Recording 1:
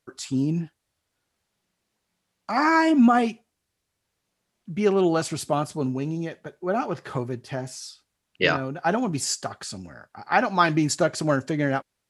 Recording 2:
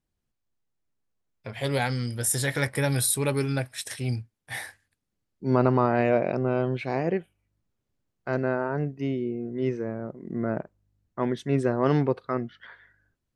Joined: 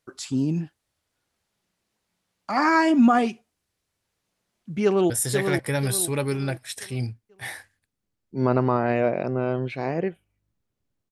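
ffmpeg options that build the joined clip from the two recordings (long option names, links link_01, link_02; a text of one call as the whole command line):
ffmpeg -i cue0.wav -i cue1.wav -filter_complex "[0:a]apad=whole_dur=11.11,atrim=end=11.11,atrim=end=5.102[link_01];[1:a]atrim=start=2.188:end=8.2[link_02];[link_01][link_02]acrossfade=duration=0.004:curve1=hsin:curve2=hsin,asplit=2[link_03][link_04];[link_04]afade=type=in:start_time=4.84:duration=0.01,afade=type=out:start_time=5.1:duration=0.01,aecho=0:1:490|980|1470|1960|2450:0.530884|0.212354|0.0849415|0.0339766|0.0135906[link_05];[link_03][link_05]amix=inputs=2:normalize=0" out.wav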